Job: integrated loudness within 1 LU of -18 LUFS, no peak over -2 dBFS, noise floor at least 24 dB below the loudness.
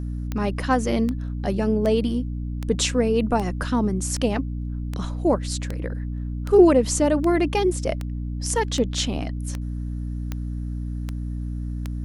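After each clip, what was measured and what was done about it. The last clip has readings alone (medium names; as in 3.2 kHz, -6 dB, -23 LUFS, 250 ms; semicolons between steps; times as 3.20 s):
clicks found 16; hum 60 Hz; highest harmonic 300 Hz; hum level -26 dBFS; loudness -24.0 LUFS; peak level -3.5 dBFS; loudness target -18.0 LUFS
-> de-click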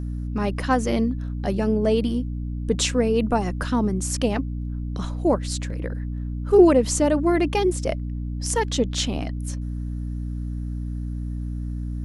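clicks found 0; hum 60 Hz; highest harmonic 300 Hz; hum level -26 dBFS
-> hum notches 60/120/180/240/300 Hz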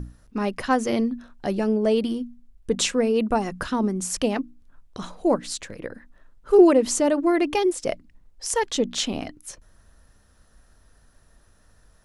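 hum not found; loudness -23.0 LUFS; peak level -4.5 dBFS; loudness target -18.0 LUFS
-> trim +5 dB; peak limiter -2 dBFS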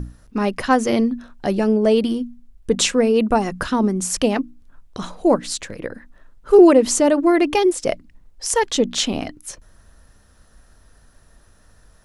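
loudness -18.5 LUFS; peak level -2.0 dBFS; noise floor -53 dBFS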